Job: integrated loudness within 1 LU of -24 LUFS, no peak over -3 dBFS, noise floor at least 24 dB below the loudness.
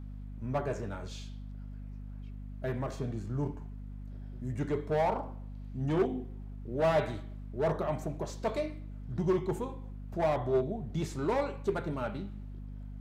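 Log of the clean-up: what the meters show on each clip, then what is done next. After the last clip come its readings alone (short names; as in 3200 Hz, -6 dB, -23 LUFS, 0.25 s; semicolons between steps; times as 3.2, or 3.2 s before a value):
hum 50 Hz; harmonics up to 250 Hz; hum level -40 dBFS; loudness -34.0 LUFS; peak -18.0 dBFS; loudness target -24.0 LUFS
-> de-hum 50 Hz, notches 5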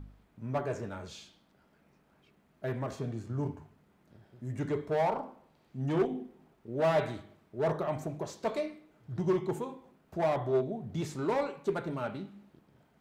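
hum none; loudness -34.0 LUFS; peak -18.0 dBFS; loudness target -24.0 LUFS
-> gain +10 dB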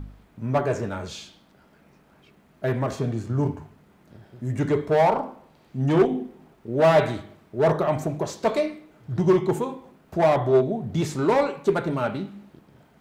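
loudness -24.0 LUFS; peak -8.0 dBFS; noise floor -58 dBFS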